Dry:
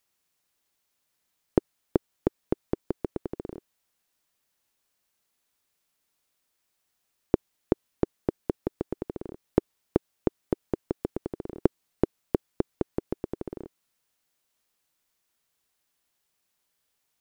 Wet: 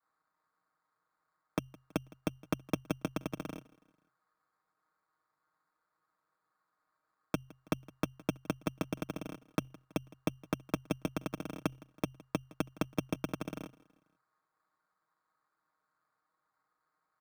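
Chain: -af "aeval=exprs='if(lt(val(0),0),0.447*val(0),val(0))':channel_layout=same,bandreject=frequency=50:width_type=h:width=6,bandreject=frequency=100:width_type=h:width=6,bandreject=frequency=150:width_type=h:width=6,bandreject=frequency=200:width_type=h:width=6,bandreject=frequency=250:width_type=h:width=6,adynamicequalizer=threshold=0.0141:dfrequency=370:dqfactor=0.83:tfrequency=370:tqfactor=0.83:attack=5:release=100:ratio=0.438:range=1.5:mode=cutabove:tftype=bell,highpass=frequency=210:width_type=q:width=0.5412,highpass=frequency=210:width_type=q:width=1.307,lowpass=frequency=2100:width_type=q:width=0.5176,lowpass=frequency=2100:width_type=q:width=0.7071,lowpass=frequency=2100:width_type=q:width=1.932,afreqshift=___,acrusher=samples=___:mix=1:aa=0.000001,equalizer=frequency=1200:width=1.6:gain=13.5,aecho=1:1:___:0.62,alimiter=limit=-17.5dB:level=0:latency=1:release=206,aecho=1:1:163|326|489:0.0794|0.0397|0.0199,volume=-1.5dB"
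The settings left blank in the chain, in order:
-120, 15, 6.4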